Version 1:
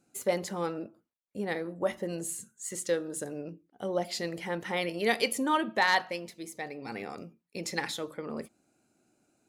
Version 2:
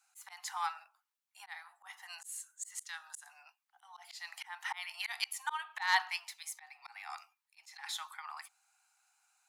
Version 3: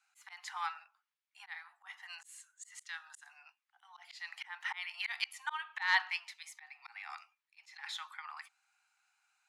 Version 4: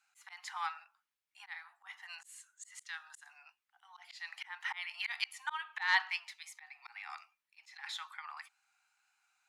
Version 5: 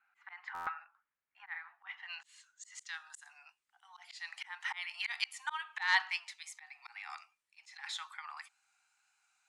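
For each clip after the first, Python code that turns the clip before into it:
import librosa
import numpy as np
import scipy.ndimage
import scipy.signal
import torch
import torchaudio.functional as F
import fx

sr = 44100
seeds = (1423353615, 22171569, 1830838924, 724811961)

y1 = scipy.signal.sosfilt(scipy.signal.butter(16, 780.0, 'highpass', fs=sr, output='sos'), x)
y1 = fx.auto_swell(y1, sr, attack_ms=285.0)
y1 = y1 * librosa.db_to_amplitude(3.0)
y2 = fx.bandpass_q(y1, sr, hz=2100.0, q=0.87)
y2 = y2 * librosa.db_to_amplitude(2.0)
y3 = fx.wow_flutter(y2, sr, seeds[0], rate_hz=2.1, depth_cents=22.0)
y4 = fx.filter_sweep_lowpass(y3, sr, from_hz=1700.0, to_hz=8700.0, start_s=1.5, end_s=3.06, q=1.6)
y4 = fx.buffer_glitch(y4, sr, at_s=(0.54,), block=512, repeats=10)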